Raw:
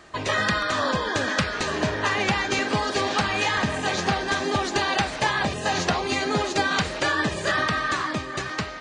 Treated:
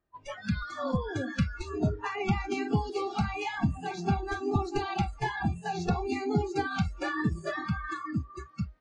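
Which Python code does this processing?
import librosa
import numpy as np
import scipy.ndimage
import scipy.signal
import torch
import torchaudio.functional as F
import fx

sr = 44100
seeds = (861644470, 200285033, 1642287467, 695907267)

y = fx.noise_reduce_blind(x, sr, reduce_db=29)
y = fx.tilt_eq(y, sr, slope=-3.0)
y = y * librosa.db_to_amplitude(-7.0)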